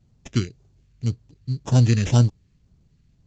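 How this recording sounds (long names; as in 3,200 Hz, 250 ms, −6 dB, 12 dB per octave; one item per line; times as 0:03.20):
aliases and images of a low sample rate 4,400 Hz, jitter 0%
phaser sweep stages 2, 1.9 Hz, lowest notch 800–2,000 Hz
mu-law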